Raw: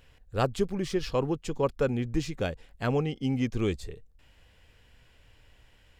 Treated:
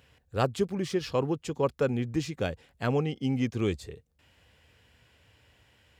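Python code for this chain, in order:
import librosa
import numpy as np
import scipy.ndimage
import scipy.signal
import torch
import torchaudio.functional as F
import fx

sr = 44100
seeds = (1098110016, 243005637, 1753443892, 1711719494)

y = scipy.signal.sosfilt(scipy.signal.butter(4, 68.0, 'highpass', fs=sr, output='sos'), x)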